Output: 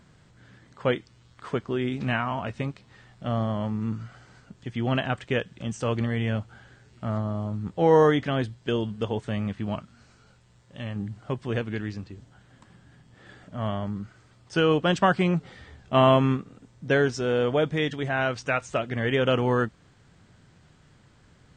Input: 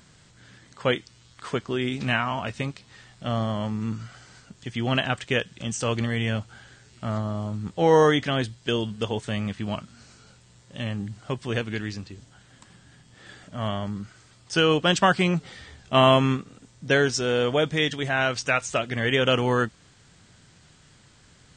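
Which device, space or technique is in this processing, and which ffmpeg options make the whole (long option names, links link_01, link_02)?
through cloth: -filter_complex "[0:a]highshelf=frequency=2700:gain=-12.5,asettb=1/sr,asplit=3[link_01][link_02][link_03];[link_01]atrim=end=9.814[link_04];[link_02]atrim=start=9.81:end=10.96,asetpts=PTS-STARTPTS,afade=type=in:duration=0.004:curve=qsin,afade=type=out:start_time=1.146:duration=0.004:curve=qsin,equalizer=frequency=230:width=0.35:gain=-4.5[link_05];[link_03]atrim=start=10.956[link_06];[link_04][link_05]acrossfade=duration=0.004:curve1=hsin:curve2=qsin[link_07];[link_07][link_06]acrossfade=duration=0.004:curve1=qsin:curve2=hsin"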